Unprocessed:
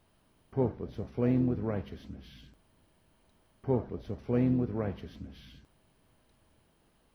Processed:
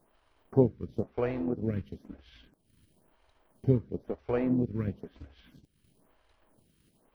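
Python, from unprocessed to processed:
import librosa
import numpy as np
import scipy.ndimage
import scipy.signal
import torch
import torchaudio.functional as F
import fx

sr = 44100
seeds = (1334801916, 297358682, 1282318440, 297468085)

y = fx.transient(x, sr, attack_db=6, sustain_db=-9)
y = fx.stagger_phaser(y, sr, hz=1.0)
y = y * librosa.db_to_amplitude(3.5)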